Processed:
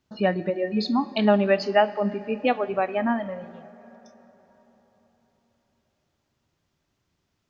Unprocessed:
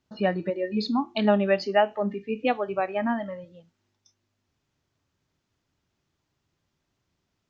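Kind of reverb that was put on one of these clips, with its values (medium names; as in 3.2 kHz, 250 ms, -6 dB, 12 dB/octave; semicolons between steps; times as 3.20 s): plate-style reverb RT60 4.3 s, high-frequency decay 0.55×, DRR 16 dB; trim +2 dB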